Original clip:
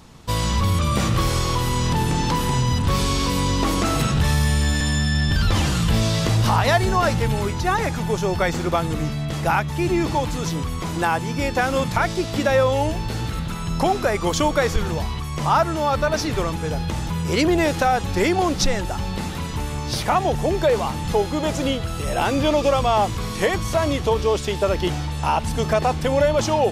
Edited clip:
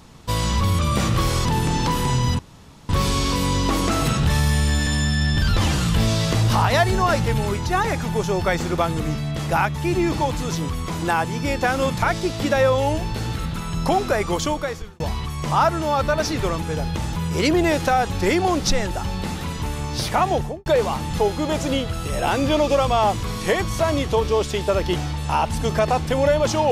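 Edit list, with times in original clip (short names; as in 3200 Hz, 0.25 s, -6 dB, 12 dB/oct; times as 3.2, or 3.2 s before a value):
1.45–1.89 cut
2.83 insert room tone 0.50 s
14.19–14.94 fade out linear
20.28–20.6 studio fade out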